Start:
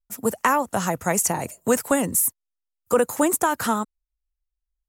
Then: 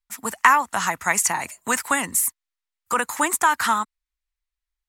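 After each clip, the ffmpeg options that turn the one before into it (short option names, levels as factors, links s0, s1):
-af "equalizer=f=125:t=o:w=1:g=-8,equalizer=f=500:t=o:w=1:g=-9,equalizer=f=1000:t=o:w=1:g=9,equalizer=f=2000:t=o:w=1:g=11,equalizer=f=4000:t=o:w=1:g=7,equalizer=f=8000:t=o:w=1:g=5,volume=0.596"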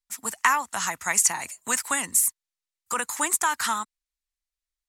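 -af "equalizer=f=7100:t=o:w=2.4:g=9,volume=0.422"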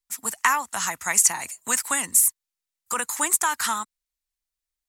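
-af "crystalizer=i=0.5:c=0"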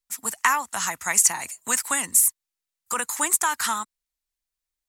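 -af "asoftclip=type=hard:threshold=0.668"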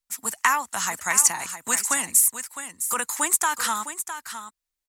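-af "aecho=1:1:659:0.299"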